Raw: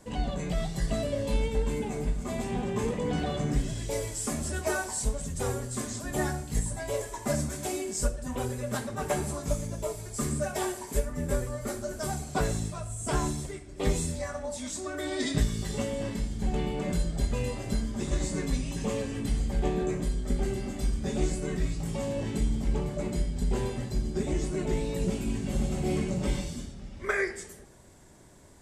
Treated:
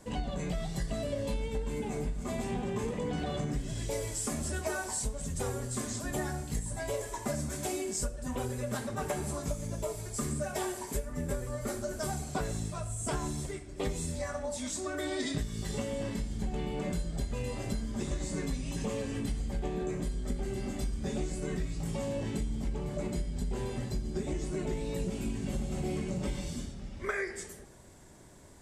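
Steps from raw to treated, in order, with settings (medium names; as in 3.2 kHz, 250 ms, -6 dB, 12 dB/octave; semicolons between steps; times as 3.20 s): compression, threshold -30 dBFS, peak gain reduction 11 dB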